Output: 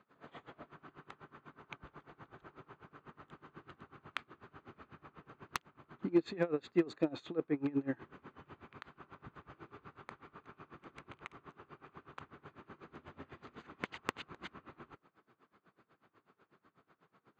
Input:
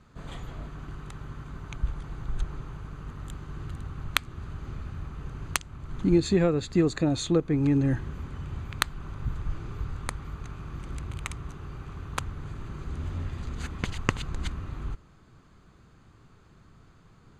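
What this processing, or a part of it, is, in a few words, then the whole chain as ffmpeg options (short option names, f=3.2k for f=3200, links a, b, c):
helicopter radio: -af "highpass=320,lowpass=2.6k,aeval=exprs='val(0)*pow(10,-23*(0.5-0.5*cos(2*PI*8.1*n/s))/20)':c=same,asoftclip=type=hard:threshold=-18.5dB,volume=-1dB"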